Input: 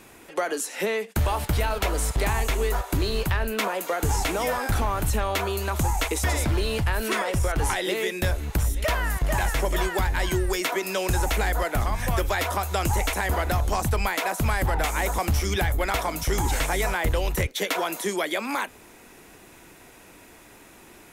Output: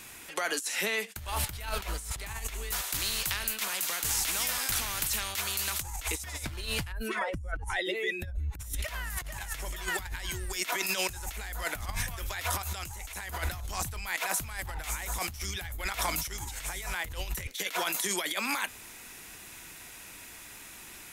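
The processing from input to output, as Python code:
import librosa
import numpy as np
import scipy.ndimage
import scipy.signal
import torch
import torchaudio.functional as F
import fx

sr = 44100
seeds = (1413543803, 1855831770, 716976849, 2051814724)

y = fx.spectral_comp(x, sr, ratio=2.0, at=(2.71, 5.82))
y = fx.spec_expand(y, sr, power=1.8, at=(6.91, 8.59), fade=0.02)
y = fx.env_flatten(y, sr, amount_pct=50, at=(12.58, 13.38))
y = fx.tone_stack(y, sr, knobs='5-5-5')
y = fx.over_compress(y, sr, threshold_db=-41.0, ratio=-0.5)
y = y * librosa.db_to_amplitude(8.5)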